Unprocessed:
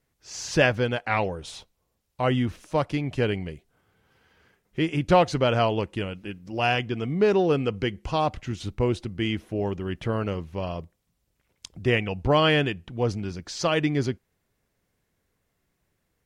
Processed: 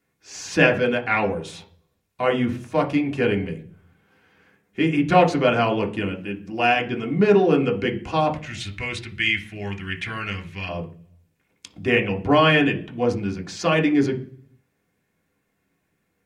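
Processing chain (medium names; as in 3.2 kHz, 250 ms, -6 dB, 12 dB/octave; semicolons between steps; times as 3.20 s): 8.46–10.69 s: graphic EQ 250/500/1000/2000/4000/8000 Hz -11/-12/-6/+10/+5/+6 dB; reverberation RT60 0.50 s, pre-delay 3 ms, DRR 1 dB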